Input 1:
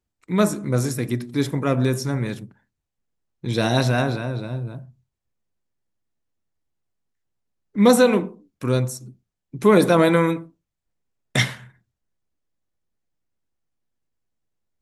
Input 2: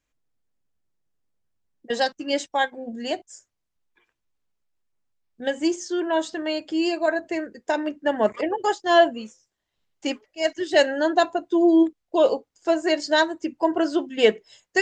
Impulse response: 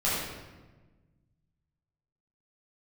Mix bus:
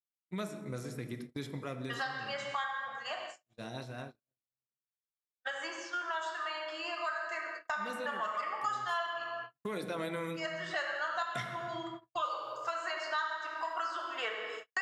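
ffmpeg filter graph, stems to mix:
-filter_complex "[0:a]acompressor=mode=upward:threshold=-35dB:ratio=2.5,volume=-0.5dB,afade=type=out:start_time=1.56:duration=0.64:silence=0.354813,afade=type=in:start_time=9.53:duration=0.73:silence=0.251189,asplit=2[link_01][link_02];[link_02]volume=-19.5dB[link_03];[1:a]highpass=frequency=1200:width_type=q:width=9.8,volume=-7.5dB,asplit=3[link_04][link_05][link_06];[link_04]atrim=end=9.24,asetpts=PTS-STARTPTS,afade=type=out:start_time=9.236:duration=0.004:curve=hsin[link_07];[link_05]atrim=start=9.24:end=10.17,asetpts=PTS-STARTPTS,volume=0[link_08];[link_06]atrim=start=10.17,asetpts=PTS-STARTPTS,afade=type=in:duration=0.004:curve=hsin[link_09];[link_07][link_08][link_09]concat=n=3:v=0:a=1,asplit=2[link_10][link_11];[link_11]volume=-8.5dB[link_12];[2:a]atrim=start_sample=2205[link_13];[link_03][link_12]amix=inputs=2:normalize=0[link_14];[link_14][link_13]afir=irnorm=-1:irlink=0[link_15];[link_01][link_10][link_15]amix=inputs=3:normalize=0,highpass=frequency=120:poles=1,agate=range=-57dB:threshold=-40dB:ratio=16:detection=peak,acrossover=split=1900|3900[link_16][link_17][link_18];[link_16]acompressor=threshold=-37dB:ratio=4[link_19];[link_17]acompressor=threshold=-46dB:ratio=4[link_20];[link_18]acompressor=threshold=-56dB:ratio=4[link_21];[link_19][link_20][link_21]amix=inputs=3:normalize=0"

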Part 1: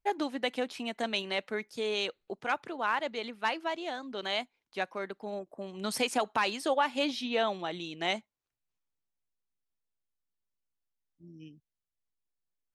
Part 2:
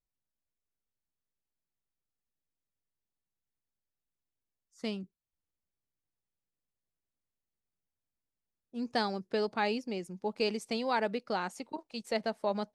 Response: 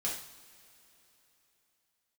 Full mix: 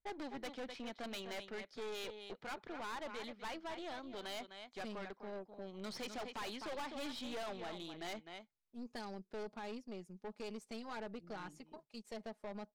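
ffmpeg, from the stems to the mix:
-filter_complex "[0:a]lowpass=frequency=5400:width=0.5412,lowpass=frequency=5400:width=1.3066,bandreject=frequency=2700:width=9,volume=-4.5dB,asplit=2[link_01][link_02];[link_02]volume=-13dB[link_03];[1:a]aecho=1:1:4.8:0.61,alimiter=limit=-20dB:level=0:latency=1:release=73,adynamicequalizer=threshold=0.00447:dfrequency=2600:dqfactor=0.7:tfrequency=2600:tqfactor=0.7:attack=5:release=100:ratio=0.375:range=2.5:mode=cutabove:tftype=highshelf,volume=-10.5dB[link_04];[link_03]aecho=0:1:254:1[link_05];[link_01][link_04][link_05]amix=inputs=3:normalize=0,aeval=exprs='(tanh(112*val(0)+0.55)-tanh(0.55))/112':channel_layout=same"

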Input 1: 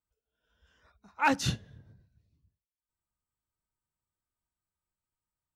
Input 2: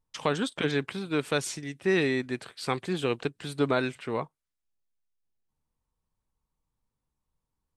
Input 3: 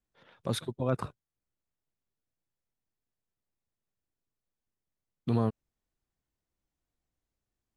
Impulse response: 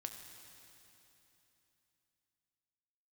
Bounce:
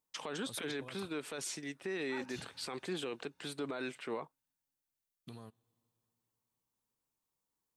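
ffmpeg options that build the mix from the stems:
-filter_complex "[0:a]lowshelf=frequency=140:gain=-11,adelay=900,volume=-17.5dB,asplit=2[link_01][link_02];[link_02]volume=-6dB[link_03];[1:a]highpass=240,volume=-3.5dB[link_04];[2:a]acompressor=threshold=-30dB:ratio=6,crystalizer=i=8:c=0,volume=-17.5dB,asplit=2[link_05][link_06];[link_06]volume=-17.5dB[link_07];[3:a]atrim=start_sample=2205[link_08];[link_03][link_07]amix=inputs=2:normalize=0[link_09];[link_09][link_08]afir=irnorm=-1:irlink=0[link_10];[link_01][link_04][link_05][link_10]amix=inputs=4:normalize=0,alimiter=level_in=6dB:limit=-24dB:level=0:latency=1:release=39,volume=-6dB"

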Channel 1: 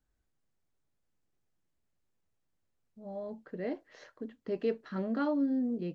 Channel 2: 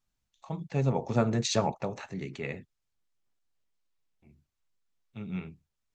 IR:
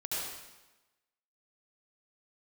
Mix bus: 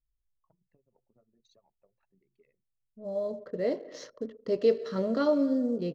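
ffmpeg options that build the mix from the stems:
-filter_complex "[0:a]firequalizer=gain_entry='entry(320,0);entry(520,10);entry(840,5);entry(2500,3);entry(5400,14)':delay=0.05:min_phase=1,volume=1.5dB,asplit=2[link_01][link_02];[link_02]volume=-17dB[link_03];[1:a]acompressor=threshold=-38dB:ratio=8,asplit=2[link_04][link_05];[link_05]highpass=frequency=720:poles=1,volume=16dB,asoftclip=type=tanh:threshold=-22dB[link_06];[link_04][link_06]amix=inputs=2:normalize=0,lowpass=frequency=7100:poles=1,volume=-6dB,volume=-20dB[link_07];[2:a]atrim=start_sample=2205[link_08];[link_03][link_08]afir=irnorm=-1:irlink=0[link_09];[link_01][link_07][link_09]amix=inputs=3:normalize=0,anlmdn=0.01,equalizer=frequency=125:width_type=o:width=0.33:gain=7,equalizer=frequency=800:width_type=o:width=0.33:gain=-10,equalizer=frequency=1600:width_type=o:width=0.33:gain=-8,equalizer=frequency=2500:width_type=o:width=0.33:gain=-4"

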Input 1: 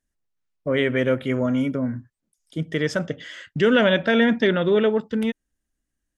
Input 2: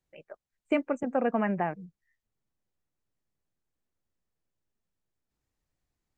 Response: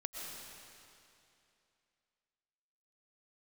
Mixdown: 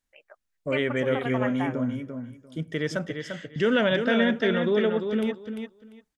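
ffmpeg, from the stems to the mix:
-filter_complex "[0:a]volume=-5dB,asplit=2[link_01][link_02];[link_02]volume=-6.5dB[link_03];[1:a]highpass=970,volume=2dB[link_04];[link_03]aecho=0:1:346|692|1038:1|0.18|0.0324[link_05];[link_01][link_04][link_05]amix=inputs=3:normalize=0"

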